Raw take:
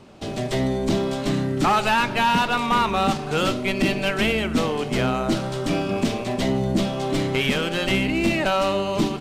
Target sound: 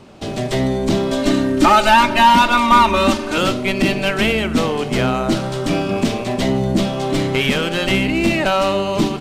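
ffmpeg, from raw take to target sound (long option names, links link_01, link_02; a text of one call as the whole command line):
ffmpeg -i in.wav -filter_complex "[0:a]asettb=1/sr,asplit=3[link_01][link_02][link_03];[link_01]atrim=end=1.114[link_04];[link_02]atrim=start=1.11:end=3.38,asetpts=PTS-STARTPTS,afade=type=in:duration=0.004:curve=qsin,afade=type=out:start_time=2.266:duration=0.004:curve=qsin,aecho=1:1:3.3:0.98,atrim=end_sample=100107[link_05];[link_03]atrim=start=3.376[link_06];[link_04][link_05]acrossfade=duration=0.004:curve1=hsin:curve2=qsin[link_07];[link_07][link_06]acrossfade=duration=0.004:curve1=qsin:curve2=hsin,volume=4.5dB" out.wav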